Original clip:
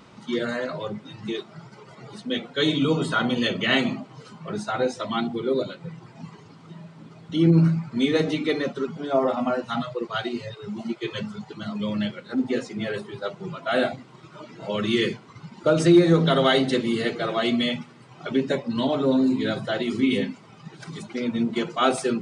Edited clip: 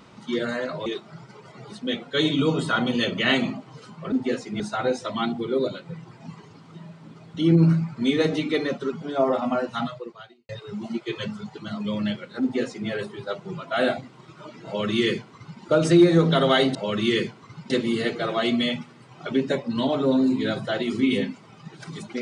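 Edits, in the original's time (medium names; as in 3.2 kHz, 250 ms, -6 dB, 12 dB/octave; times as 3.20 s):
0.86–1.29 s: delete
9.76–10.44 s: fade out quadratic
12.36–12.84 s: copy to 4.55 s
14.61–15.56 s: copy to 16.70 s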